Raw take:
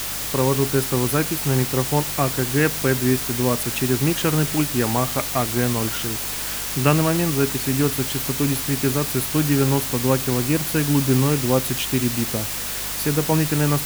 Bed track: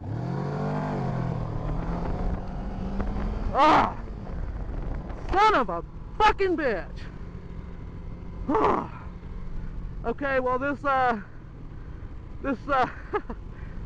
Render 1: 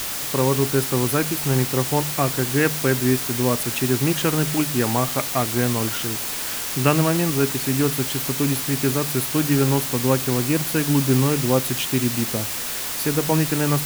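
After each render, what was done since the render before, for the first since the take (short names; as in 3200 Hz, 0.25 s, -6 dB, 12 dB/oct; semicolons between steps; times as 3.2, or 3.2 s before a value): de-hum 50 Hz, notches 4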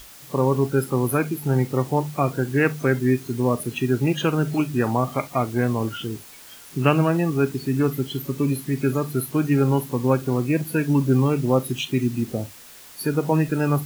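noise print and reduce 17 dB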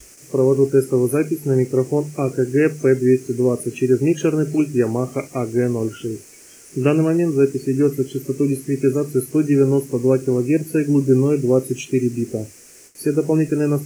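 gate with hold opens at -34 dBFS; EQ curve 220 Hz 0 dB, 390 Hz +9 dB, 910 Hz -10 dB, 2400 Hz 0 dB, 3600 Hz -14 dB, 5900 Hz +6 dB, 9200 Hz +4 dB, 15000 Hz -10 dB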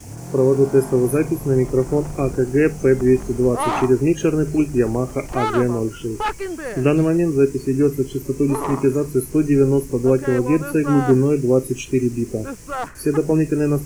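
add bed track -3.5 dB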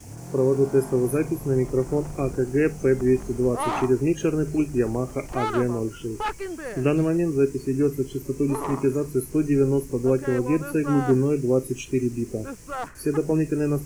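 gain -5 dB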